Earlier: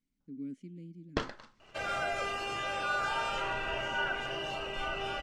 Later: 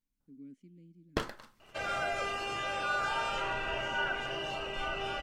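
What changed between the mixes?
speech -9.0 dB; first sound: remove low-pass 6.7 kHz 24 dB/octave

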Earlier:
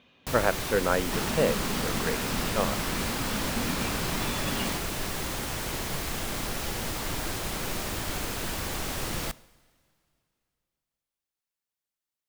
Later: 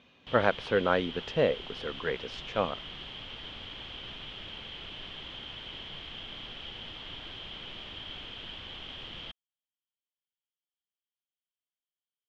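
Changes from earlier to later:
first sound: add four-pole ladder low-pass 3.3 kHz, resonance 85%; second sound: muted; reverb: off

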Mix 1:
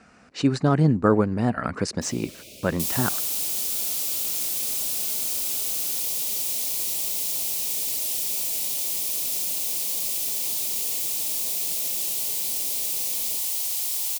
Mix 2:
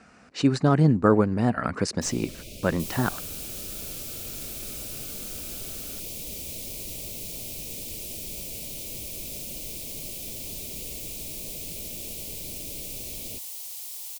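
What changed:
first sound: remove high-pass 350 Hz 6 dB/octave; second sound -11.0 dB

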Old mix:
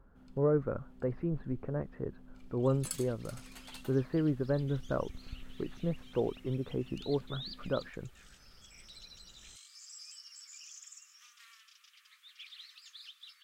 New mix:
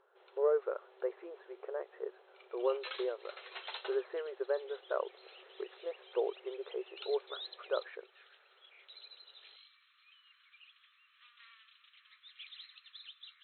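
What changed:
first sound +9.5 dB; master: add brick-wall FIR band-pass 360–4200 Hz

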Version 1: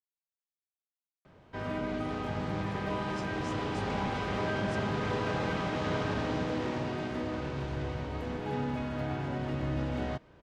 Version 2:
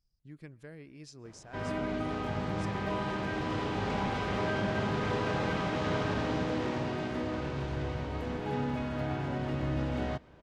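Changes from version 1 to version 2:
speech: entry -2.10 s; reverb: on, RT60 0.85 s

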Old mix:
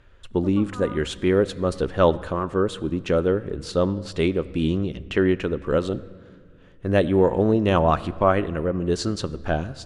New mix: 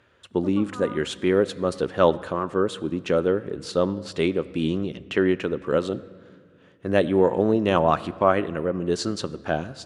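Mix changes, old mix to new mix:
speech: add high-pass 150 Hz 6 dB/octave; master: add high-pass 92 Hz

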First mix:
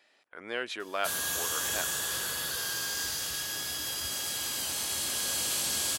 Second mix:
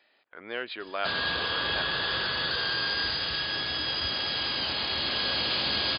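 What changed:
background +7.5 dB; master: add brick-wall FIR low-pass 5 kHz

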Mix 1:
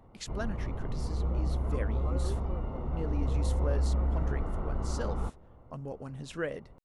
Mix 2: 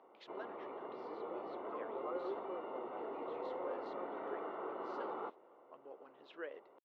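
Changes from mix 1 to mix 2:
speech -11.0 dB; master: add elliptic band-pass 360–3500 Hz, stop band 80 dB

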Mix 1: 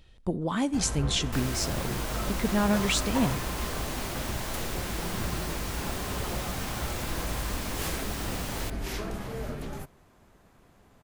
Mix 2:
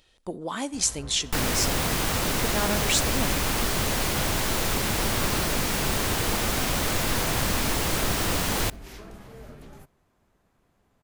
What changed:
speech: add tone controls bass -13 dB, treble +6 dB; first sound -9.0 dB; second sound +10.0 dB

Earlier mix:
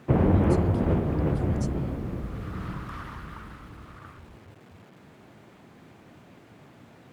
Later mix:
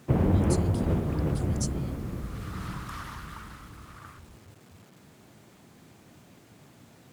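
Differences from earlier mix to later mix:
first sound -4.5 dB; master: add tone controls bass +3 dB, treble +13 dB

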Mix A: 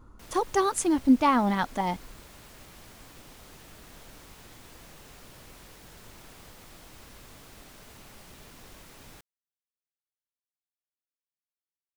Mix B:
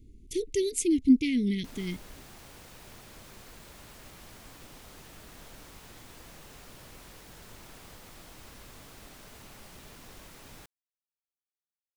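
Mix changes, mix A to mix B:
speech: add Chebyshev band-stop 440–2100 Hz, order 5; background: entry +1.45 s

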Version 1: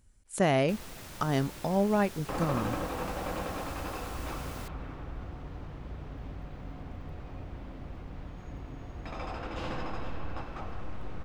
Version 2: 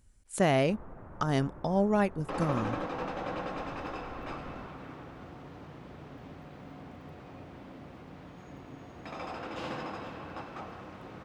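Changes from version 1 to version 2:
first sound: add low-pass 1.3 kHz 24 dB/octave; second sound: add high-pass 150 Hz 12 dB/octave

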